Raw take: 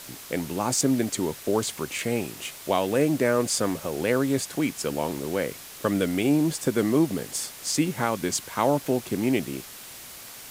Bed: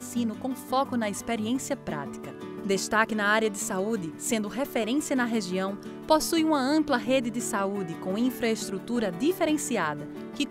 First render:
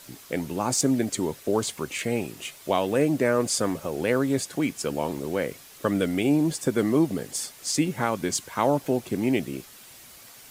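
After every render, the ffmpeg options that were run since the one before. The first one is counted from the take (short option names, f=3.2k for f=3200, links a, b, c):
-af "afftdn=nr=7:nf=-43"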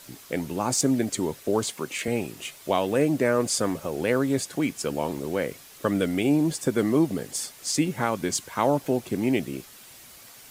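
-filter_complex "[0:a]asettb=1/sr,asplit=3[a][b][c];[a]atrim=end=1.674[d];[b]atrim=start=1.67:end=2.08,asetpts=PTS-STARTPTS,afade=t=in:d=0.004:c=qsin,afade=t=out:st=0.406:d=0.004:c=qsin,highpass=150[e];[c]atrim=start=2.076[f];[d][e]acrossfade=d=0.004:c1=hsin:c2=qsin[g];[g][f]acrossfade=d=0.004:c1=qsin:c2=hsin"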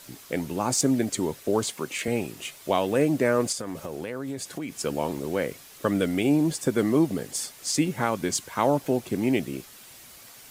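-filter_complex "[0:a]asettb=1/sr,asplit=3[a][b][c];[a]atrim=end=3.524[d];[b]atrim=start=3.52:end=4.79,asetpts=PTS-STARTPTS,afade=t=in:d=0.004:c=qsin,afade=t=out:st=1.266:d=0.004:c=qsin,acompressor=threshold=-29dB:ratio=6:attack=3.2:release=140:knee=1:detection=peak[e];[c]atrim=start=4.786[f];[d][e]acrossfade=d=0.004:c1=hsin:c2=qsin[g];[g][f]acrossfade=d=0.004:c1=qsin:c2=hsin"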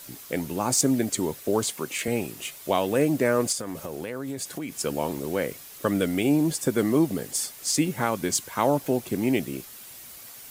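-af "highshelf=f=11k:g=10"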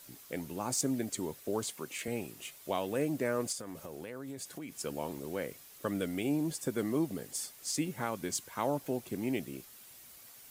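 -af "volume=-10dB"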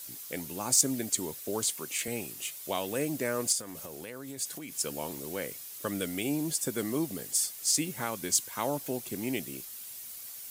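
-af "highshelf=f=3k:g=11.5"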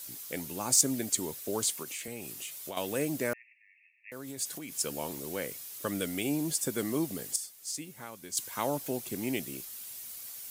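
-filter_complex "[0:a]asettb=1/sr,asplit=3[a][b][c];[a]atrim=end=1.824[d];[b]atrim=start=1.82:end=2.77,asetpts=PTS-STARTPTS,afade=t=in:d=0.004:c=qsin,afade=t=out:st=0.946:d=0.004:c=qsin,acompressor=threshold=-36dB:ratio=4:attack=3.2:release=140:knee=1:detection=peak[e];[c]atrim=start=2.766[f];[d][e]acrossfade=d=0.004:c1=hsin:c2=qsin[g];[g][f]acrossfade=d=0.004:c1=qsin:c2=hsin,asettb=1/sr,asplit=3[h][i][j];[h]atrim=end=3.334[k];[i]atrim=start=3.33:end=4.12,asetpts=PTS-STARTPTS,afade=t=in:d=0.004:c=qsin,afade=t=out:st=0.786:d=0.004:c=qsin,asuperpass=centerf=2200:order=20:qfactor=2.3[l];[j]atrim=start=4.116[m];[k][l]acrossfade=d=0.004:c1=hsin:c2=qsin[n];[n][m]acrossfade=d=0.004:c1=qsin:c2=hsin,asplit=3[o][p][q];[o]atrim=end=7.362[r];[p]atrim=start=7.358:end=8.372,asetpts=PTS-STARTPTS,volume=-10.5dB[s];[q]atrim=start=8.368[t];[r][s]acrossfade=d=0.004:c1=hsin:c2=hsin[u];[u][t]acrossfade=d=0.004:c1=hsin:c2=hsin"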